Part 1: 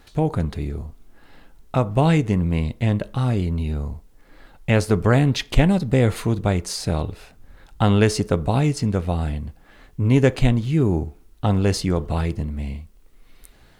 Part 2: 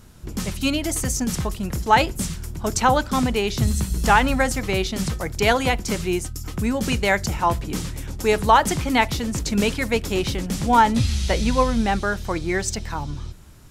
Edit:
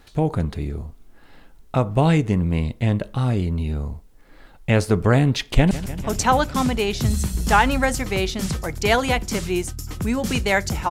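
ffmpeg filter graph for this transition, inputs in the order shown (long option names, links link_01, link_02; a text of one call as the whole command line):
ffmpeg -i cue0.wav -i cue1.wav -filter_complex "[0:a]apad=whole_dur=10.9,atrim=end=10.9,atrim=end=5.712[link_01];[1:a]atrim=start=2.278:end=7.47[link_02];[link_01][link_02]acrossfade=duration=0.004:curve1=hsin:curve2=hsin,asplit=2[link_03][link_04];[link_04]afade=type=in:start_time=5.44:duration=0.01,afade=type=out:start_time=5.71:duration=0.01,aecho=0:1:150|300|450|600|750|900|1050|1200|1350|1500|1650|1800:0.177828|0.142262|0.11381|0.0910479|0.0728383|0.0582707|0.0466165|0.0372932|0.0298346|0.0238677|0.0190941|0.0152753[link_05];[link_03][link_05]amix=inputs=2:normalize=0" out.wav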